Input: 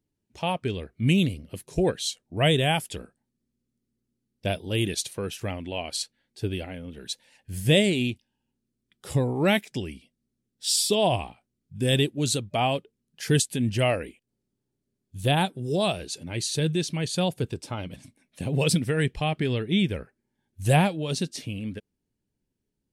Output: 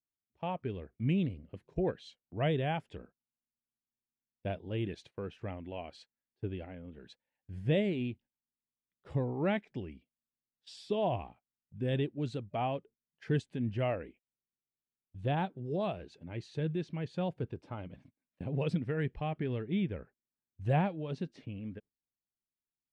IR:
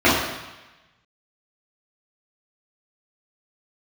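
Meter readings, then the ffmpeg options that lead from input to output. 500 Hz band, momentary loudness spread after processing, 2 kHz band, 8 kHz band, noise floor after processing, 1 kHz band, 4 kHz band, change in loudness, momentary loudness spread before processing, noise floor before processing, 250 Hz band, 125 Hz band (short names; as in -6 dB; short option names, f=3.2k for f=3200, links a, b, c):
-8.5 dB, 16 LU, -13.5 dB, under -30 dB, under -85 dBFS, -8.5 dB, -20.0 dB, -9.5 dB, 14 LU, -82 dBFS, -8.5 dB, -8.5 dB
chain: -af "lowpass=1.8k,agate=range=-17dB:threshold=-47dB:ratio=16:detection=peak,volume=-8.5dB"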